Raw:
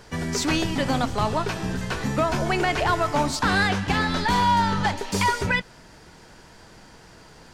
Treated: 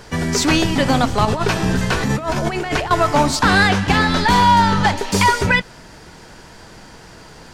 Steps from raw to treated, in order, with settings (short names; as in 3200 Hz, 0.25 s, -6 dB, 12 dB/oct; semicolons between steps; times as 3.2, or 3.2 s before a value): 1.25–2.91 negative-ratio compressor -26 dBFS, ratio -0.5; gain +7.5 dB